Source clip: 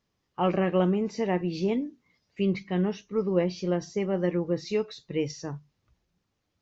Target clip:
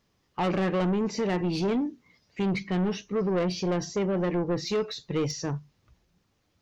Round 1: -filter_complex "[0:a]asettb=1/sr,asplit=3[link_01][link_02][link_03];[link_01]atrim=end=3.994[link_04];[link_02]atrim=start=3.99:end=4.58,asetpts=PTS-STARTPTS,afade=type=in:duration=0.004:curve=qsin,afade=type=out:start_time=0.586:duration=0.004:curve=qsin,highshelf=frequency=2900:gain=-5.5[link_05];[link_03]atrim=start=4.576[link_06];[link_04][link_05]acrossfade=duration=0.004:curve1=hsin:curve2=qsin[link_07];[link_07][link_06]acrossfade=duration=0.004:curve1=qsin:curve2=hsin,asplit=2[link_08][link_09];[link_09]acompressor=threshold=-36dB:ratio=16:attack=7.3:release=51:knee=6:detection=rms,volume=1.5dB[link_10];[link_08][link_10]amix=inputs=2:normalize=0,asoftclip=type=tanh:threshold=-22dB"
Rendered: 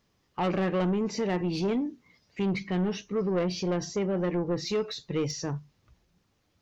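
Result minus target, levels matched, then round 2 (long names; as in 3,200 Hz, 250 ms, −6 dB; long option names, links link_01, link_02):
downward compressor: peak gain reduction +10 dB
-filter_complex "[0:a]asettb=1/sr,asplit=3[link_01][link_02][link_03];[link_01]atrim=end=3.994[link_04];[link_02]atrim=start=3.99:end=4.58,asetpts=PTS-STARTPTS,afade=type=in:duration=0.004:curve=qsin,afade=type=out:start_time=0.586:duration=0.004:curve=qsin,highshelf=frequency=2900:gain=-5.5[link_05];[link_03]atrim=start=4.576[link_06];[link_04][link_05]acrossfade=duration=0.004:curve1=hsin:curve2=qsin[link_07];[link_07][link_06]acrossfade=duration=0.004:curve1=qsin:curve2=hsin,asplit=2[link_08][link_09];[link_09]acompressor=threshold=-25.5dB:ratio=16:attack=7.3:release=51:knee=6:detection=rms,volume=1.5dB[link_10];[link_08][link_10]amix=inputs=2:normalize=0,asoftclip=type=tanh:threshold=-22dB"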